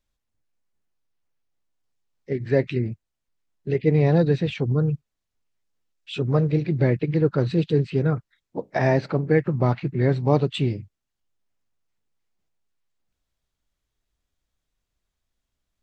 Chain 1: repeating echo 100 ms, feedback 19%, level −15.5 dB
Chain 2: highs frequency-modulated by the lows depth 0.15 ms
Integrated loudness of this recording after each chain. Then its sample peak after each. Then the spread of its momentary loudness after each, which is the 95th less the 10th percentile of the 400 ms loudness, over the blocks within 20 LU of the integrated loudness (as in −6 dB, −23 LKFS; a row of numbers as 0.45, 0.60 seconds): −22.5, −23.0 LKFS; −5.5, −5.5 dBFS; 12, 11 LU